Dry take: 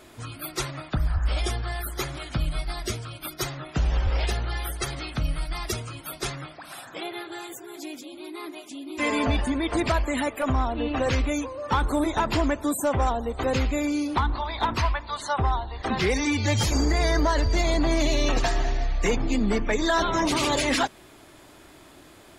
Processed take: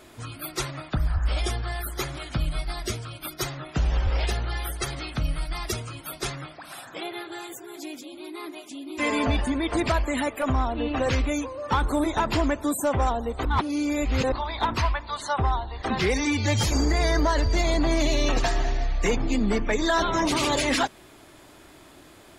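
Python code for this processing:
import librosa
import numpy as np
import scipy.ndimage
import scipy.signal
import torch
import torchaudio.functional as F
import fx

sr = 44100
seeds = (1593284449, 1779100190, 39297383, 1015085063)

y = fx.edit(x, sr, fx.reverse_span(start_s=13.45, length_s=0.87), tone=tone)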